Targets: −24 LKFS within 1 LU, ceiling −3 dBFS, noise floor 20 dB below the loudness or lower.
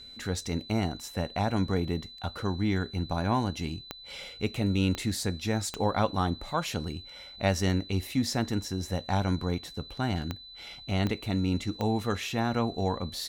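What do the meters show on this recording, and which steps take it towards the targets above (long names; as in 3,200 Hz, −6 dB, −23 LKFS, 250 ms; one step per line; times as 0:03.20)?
number of clicks 6; interfering tone 4,000 Hz; level of the tone −45 dBFS; integrated loudness −30.5 LKFS; sample peak −10.0 dBFS; target loudness −24.0 LKFS
→ click removal
notch filter 4,000 Hz, Q 30
level +6.5 dB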